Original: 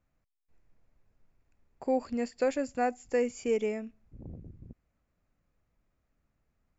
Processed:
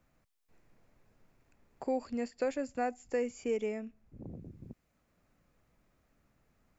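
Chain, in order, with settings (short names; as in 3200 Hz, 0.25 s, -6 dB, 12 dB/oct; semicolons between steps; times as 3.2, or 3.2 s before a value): three-band squash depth 40%; gain -4 dB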